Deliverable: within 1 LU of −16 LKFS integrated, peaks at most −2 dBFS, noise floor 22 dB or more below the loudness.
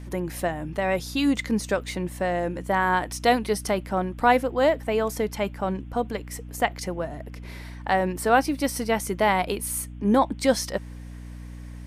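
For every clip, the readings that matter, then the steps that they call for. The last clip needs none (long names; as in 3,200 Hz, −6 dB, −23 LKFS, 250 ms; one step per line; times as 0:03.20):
mains hum 60 Hz; hum harmonics up to 300 Hz; level of the hum −36 dBFS; integrated loudness −25.0 LKFS; sample peak −6.5 dBFS; target loudness −16.0 LKFS
→ mains-hum notches 60/120/180/240/300 Hz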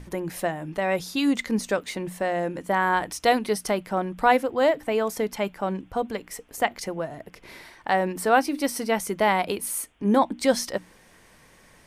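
mains hum none found; integrated loudness −25.5 LKFS; sample peak −6.5 dBFS; target loudness −16.0 LKFS
→ level +9.5 dB
brickwall limiter −2 dBFS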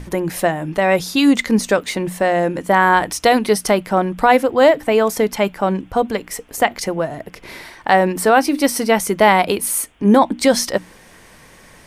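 integrated loudness −16.5 LKFS; sample peak −2.0 dBFS; background noise floor −46 dBFS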